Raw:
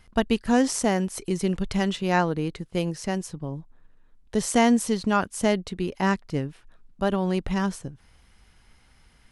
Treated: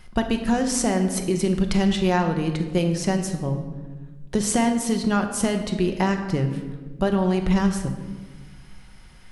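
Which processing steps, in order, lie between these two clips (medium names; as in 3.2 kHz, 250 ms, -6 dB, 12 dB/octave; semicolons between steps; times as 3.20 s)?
compression, threshold -25 dBFS, peak gain reduction 10.5 dB; simulated room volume 1000 m³, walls mixed, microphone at 0.99 m; trim +6 dB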